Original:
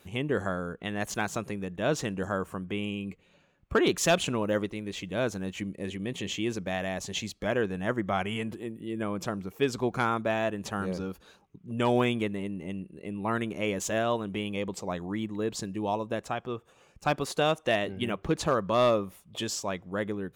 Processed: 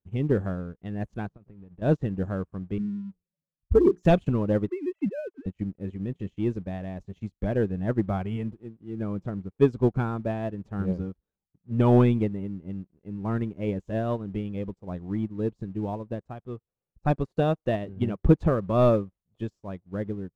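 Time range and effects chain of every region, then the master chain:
0:01.27–0:01.82: downward compressor 4 to 1, threshold −37 dBFS + high-frequency loss of the air 230 metres
0:02.78–0:04.03: expanding power law on the bin magnitudes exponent 3 + mains-hum notches 60/120/180/240/300/360/420/480 Hz
0:04.68–0:05.46: three sine waves on the formant tracks + multiband upward and downward compressor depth 100%
whole clip: spectral tilt −4.5 dB per octave; leveller curve on the samples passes 1; expander for the loud parts 2.5 to 1, over −36 dBFS

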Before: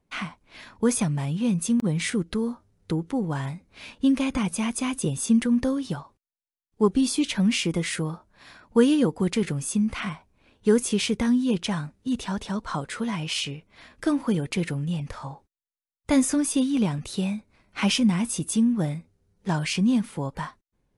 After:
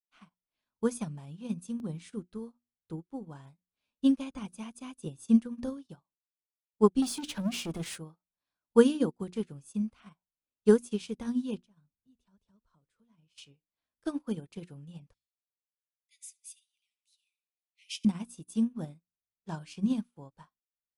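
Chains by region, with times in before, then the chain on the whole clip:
0:07.02–0:07.98: downward compressor 2 to 1, threshold −28 dBFS + leveller curve on the samples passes 3
0:11.58–0:13.38: low-shelf EQ 180 Hz +11.5 dB + downward compressor 3 to 1, threshold −38 dBFS + notch filter 790 Hz, Q 8.7
0:15.14–0:18.05: linear-phase brick-wall high-pass 1,900 Hz + repeating echo 75 ms, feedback 47%, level −12 dB
whole clip: parametric band 2,000 Hz −8 dB 0.43 octaves; mains-hum notches 60/120/180/240/300/360 Hz; expander for the loud parts 2.5 to 1, over −43 dBFS; level +1 dB

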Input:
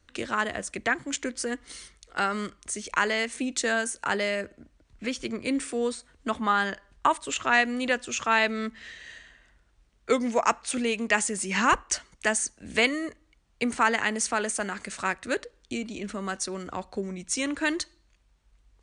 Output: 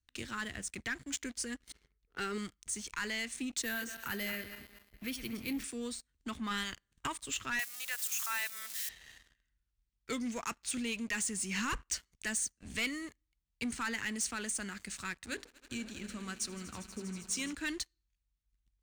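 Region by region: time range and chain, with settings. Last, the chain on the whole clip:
0:01.72–0:02.38: low-pass that shuts in the quiet parts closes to 1,100 Hz, open at −24 dBFS + parametric band 420 Hz +14.5 dB 0.29 octaves
0:03.62–0:05.64: feedback delay that plays each chunk backwards 117 ms, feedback 64%, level −11 dB + low-pass filter 6,400 Hz + bad sample-rate conversion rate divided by 3×, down filtered, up hold
0:06.50–0:07.06: ceiling on every frequency bin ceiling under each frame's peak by 15 dB + parametric band 7,600 Hz +3.5 dB 0.3 octaves + notch filter 5,000 Hz, Q 5.8
0:07.59–0:08.89: spike at every zero crossing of −23 dBFS + high-pass filter 800 Hz 24 dB per octave + dynamic equaliser 3,700 Hz, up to −5 dB, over −36 dBFS, Q 0.96
0:15.24–0:17.53: mains-hum notches 50/100/150/200/250/300/350/400/450 Hz + echo that builds up and dies away 80 ms, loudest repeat 5, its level −18 dB
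whole clip: guitar amp tone stack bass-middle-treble 6-0-2; leveller curve on the samples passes 3

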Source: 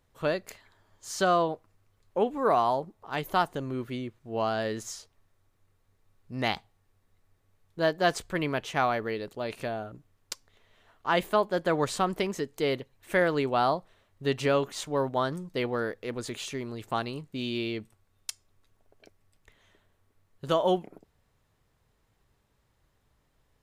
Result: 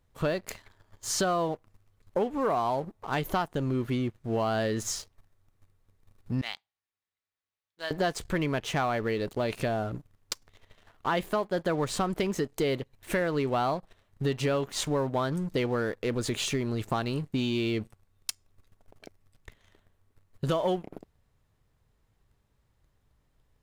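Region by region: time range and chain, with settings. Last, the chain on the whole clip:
0:06.41–0:07.91: low-pass filter 3,500 Hz + first difference
whole clip: low-shelf EQ 180 Hz +7 dB; downward compressor 4 to 1, threshold −33 dBFS; leveller curve on the samples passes 2

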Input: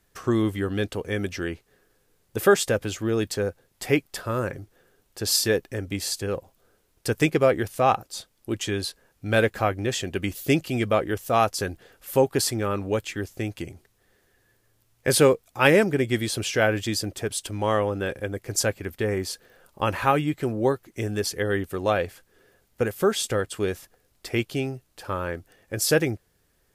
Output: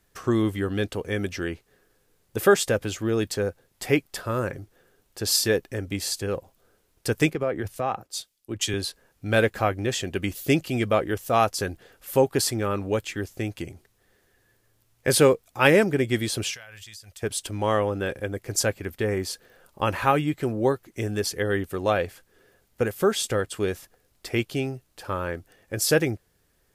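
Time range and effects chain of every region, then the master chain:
0:07.33–0:08.74: downward compressor 5 to 1, threshold −23 dBFS + multiband upward and downward expander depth 100%
0:16.54–0:17.23: guitar amp tone stack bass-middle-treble 10-0-10 + downward compressor 20 to 1, threshold −39 dBFS
whole clip: no processing

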